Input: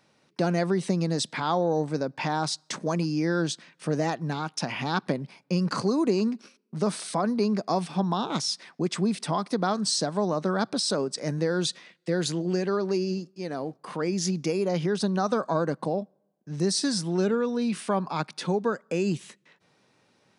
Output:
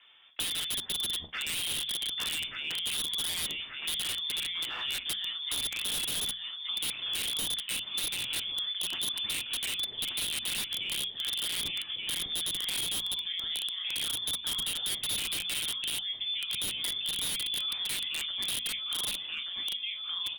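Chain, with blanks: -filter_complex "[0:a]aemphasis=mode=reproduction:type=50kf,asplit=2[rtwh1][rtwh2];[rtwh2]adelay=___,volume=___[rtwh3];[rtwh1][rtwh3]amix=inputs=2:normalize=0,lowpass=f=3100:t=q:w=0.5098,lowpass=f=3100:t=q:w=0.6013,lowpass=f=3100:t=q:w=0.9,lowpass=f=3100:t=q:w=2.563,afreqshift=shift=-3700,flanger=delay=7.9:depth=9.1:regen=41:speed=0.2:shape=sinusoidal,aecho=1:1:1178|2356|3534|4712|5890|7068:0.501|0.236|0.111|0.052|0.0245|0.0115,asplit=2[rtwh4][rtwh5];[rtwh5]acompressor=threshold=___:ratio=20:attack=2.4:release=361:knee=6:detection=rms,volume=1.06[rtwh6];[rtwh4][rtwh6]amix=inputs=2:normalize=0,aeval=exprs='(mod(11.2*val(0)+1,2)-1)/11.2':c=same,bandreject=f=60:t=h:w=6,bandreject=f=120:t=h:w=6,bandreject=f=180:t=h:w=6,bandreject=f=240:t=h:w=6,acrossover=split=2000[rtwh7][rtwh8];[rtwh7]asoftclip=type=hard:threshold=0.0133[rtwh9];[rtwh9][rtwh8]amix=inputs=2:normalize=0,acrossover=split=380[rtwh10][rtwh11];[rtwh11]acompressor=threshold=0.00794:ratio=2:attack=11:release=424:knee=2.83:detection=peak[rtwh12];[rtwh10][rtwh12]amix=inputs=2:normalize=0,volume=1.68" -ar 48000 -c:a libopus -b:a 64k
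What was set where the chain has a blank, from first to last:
42, 0.266, 0.0178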